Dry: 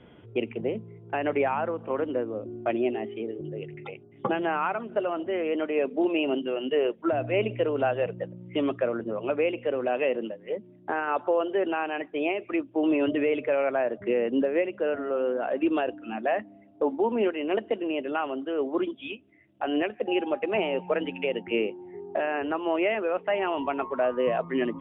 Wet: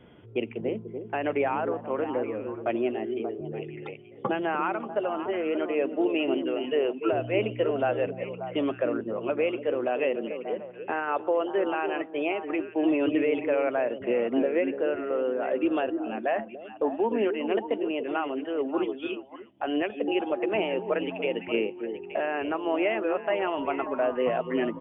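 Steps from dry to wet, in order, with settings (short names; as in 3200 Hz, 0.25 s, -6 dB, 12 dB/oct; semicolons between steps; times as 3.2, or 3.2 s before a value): on a send: delay with a stepping band-pass 0.292 s, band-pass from 330 Hz, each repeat 1.4 oct, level -5 dB; on the sum: downsampling 8000 Hz; gain -1 dB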